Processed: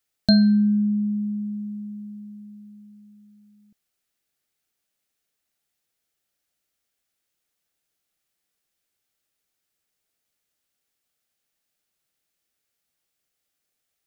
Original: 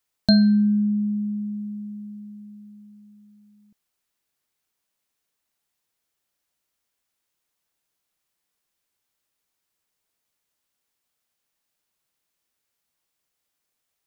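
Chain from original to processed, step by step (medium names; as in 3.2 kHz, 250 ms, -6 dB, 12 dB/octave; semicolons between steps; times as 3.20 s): peaking EQ 1 kHz -9 dB 0.29 oct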